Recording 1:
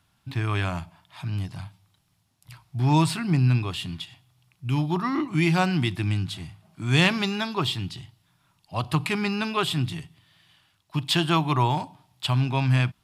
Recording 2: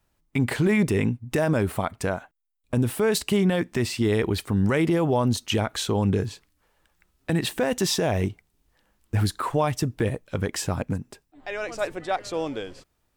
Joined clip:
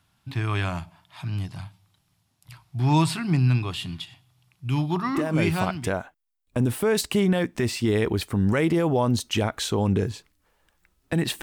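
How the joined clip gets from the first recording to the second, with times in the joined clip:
recording 1
5.45 s: go over to recording 2 from 1.62 s, crossfade 1.12 s equal-power

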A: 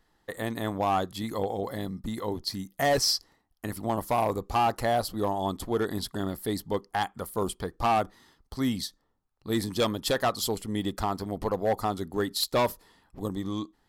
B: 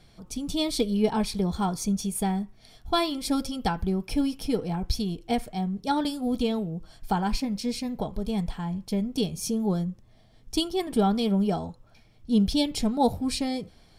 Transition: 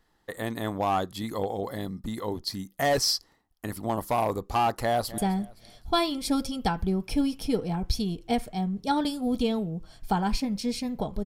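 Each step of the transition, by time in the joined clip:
A
4.72–5.18 s: echo throw 260 ms, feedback 35%, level -17 dB
5.18 s: go over to B from 2.18 s

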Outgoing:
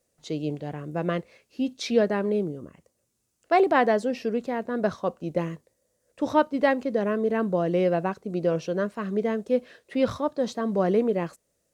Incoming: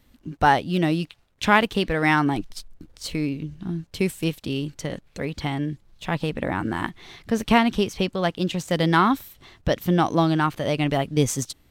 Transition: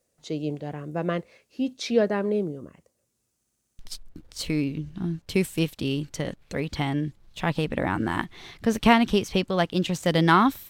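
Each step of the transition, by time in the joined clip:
outgoing
3.37 s: stutter in place 0.06 s, 7 plays
3.79 s: go over to incoming from 2.44 s

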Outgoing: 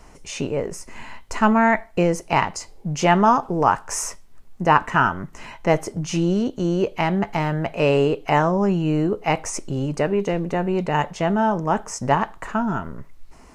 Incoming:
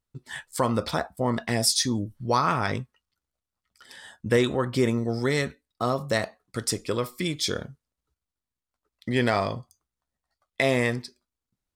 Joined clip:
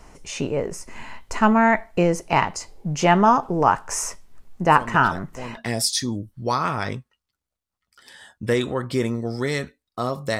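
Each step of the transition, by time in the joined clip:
outgoing
4.62 s: add incoming from 0.45 s 0.95 s -9.5 dB
5.57 s: go over to incoming from 1.40 s

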